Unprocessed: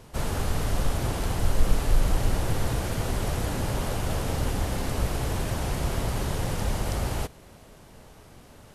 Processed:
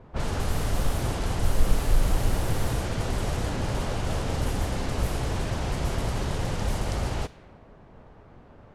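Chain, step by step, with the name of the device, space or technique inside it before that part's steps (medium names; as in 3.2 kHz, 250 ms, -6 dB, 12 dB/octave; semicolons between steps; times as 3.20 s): cassette deck with a dynamic noise filter (white noise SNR 27 dB; level-controlled noise filter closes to 1.1 kHz, open at -20.5 dBFS)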